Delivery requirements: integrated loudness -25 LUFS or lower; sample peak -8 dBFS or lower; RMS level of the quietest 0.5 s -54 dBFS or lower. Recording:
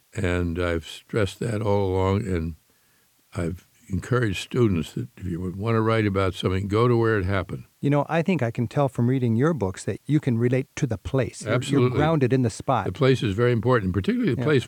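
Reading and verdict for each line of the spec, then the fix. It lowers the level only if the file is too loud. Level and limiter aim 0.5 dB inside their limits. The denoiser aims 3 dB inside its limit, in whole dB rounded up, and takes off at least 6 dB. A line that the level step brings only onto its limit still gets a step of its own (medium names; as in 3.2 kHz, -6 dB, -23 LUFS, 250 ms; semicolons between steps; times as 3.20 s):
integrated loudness -24.0 LUFS: fail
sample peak -7.0 dBFS: fail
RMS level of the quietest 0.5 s -62 dBFS: pass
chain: trim -1.5 dB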